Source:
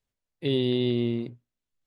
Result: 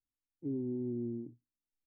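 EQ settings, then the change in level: vocal tract filter u; low shelf 170 Hz +11 dB; -7.0 dB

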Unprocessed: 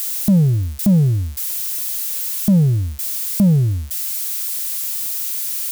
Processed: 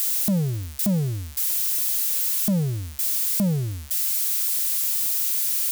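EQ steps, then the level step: low shelf 330 Hz -12 dB; 0.0 dB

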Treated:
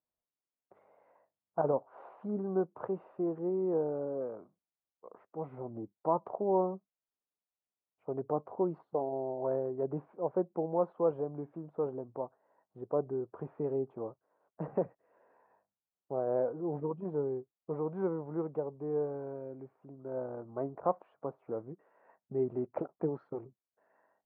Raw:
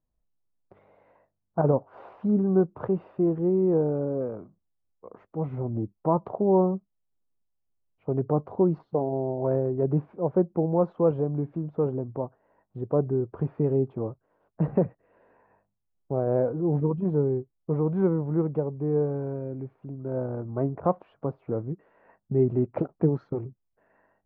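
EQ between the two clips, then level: band-pass 860 Hz, Q 0.72; -4.0 dB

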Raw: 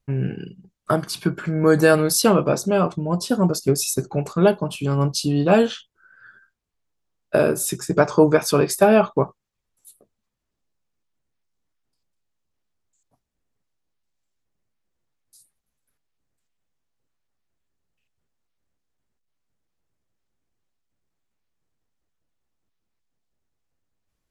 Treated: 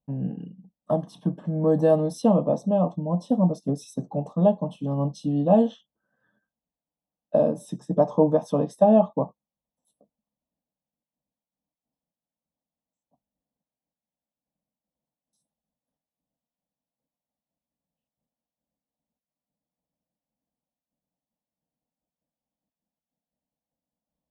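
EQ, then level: running mean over 19 samples; HPF 82 Hz; fixed phaser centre 380 Hz, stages 6; 0.0 dB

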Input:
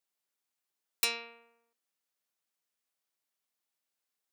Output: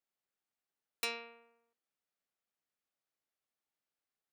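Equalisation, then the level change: high shelf 3500 Hz -11.5 dB; notch 1000 Hz, Q 13; -1.0 dB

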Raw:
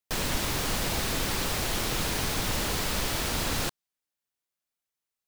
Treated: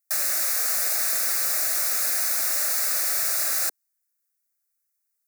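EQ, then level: HPF 370 Hz 24 dB/oct; tilt +3.5 dB/oct; fixed phaser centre 630 Hz, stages 8; 0.0 dB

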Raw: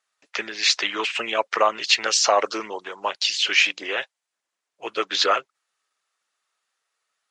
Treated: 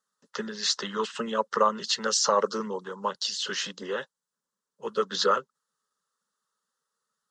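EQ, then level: low shelf 130 Hz +7.5 dB; bell 190 Hz +13.5 dB 1.6 oct; fixed phaser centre 470 Hz, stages 8; -3.0 dB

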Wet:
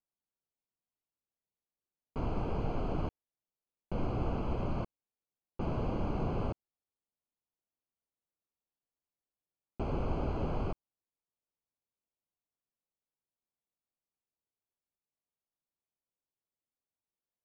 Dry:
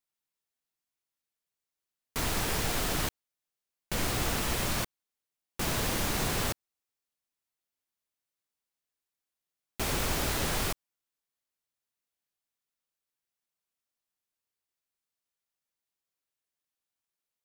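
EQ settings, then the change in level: running mean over 24 samples; air absorption 160 m; 0.0 dB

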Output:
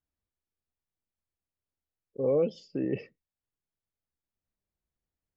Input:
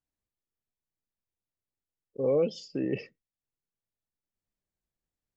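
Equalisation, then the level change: LPF 2000 Hz 6 dB/oct; bell 70 Hz +9 dB 0.35 oct; 0.0 dB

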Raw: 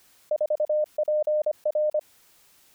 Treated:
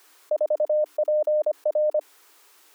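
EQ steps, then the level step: rippled Chebyshev high-pass 290 Hz, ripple 6 dB; +8.0 dB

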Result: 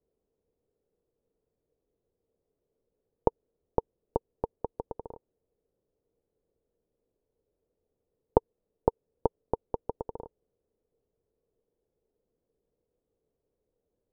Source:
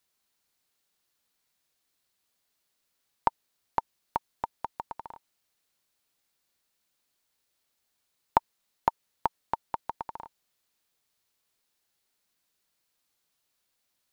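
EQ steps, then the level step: synth low-pass 460 Hz, resonance Q 5.7; low shelf 130 Hz +11.5 dB; +2.0 dB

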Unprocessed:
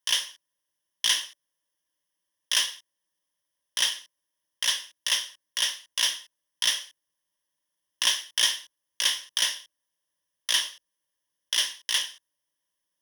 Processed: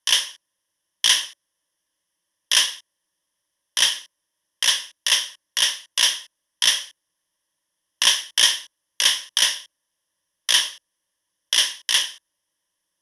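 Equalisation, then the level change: brick-wall FIR low-pass 13000 Hz; +6.5 dB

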